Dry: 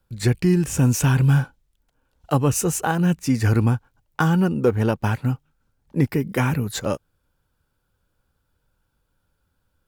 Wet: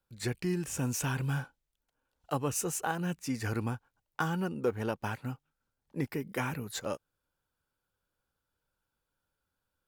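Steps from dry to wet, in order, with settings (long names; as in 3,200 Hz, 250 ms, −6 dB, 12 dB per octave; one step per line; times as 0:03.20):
low-shelf EQ 230 Hz −10 dB
level −9 dB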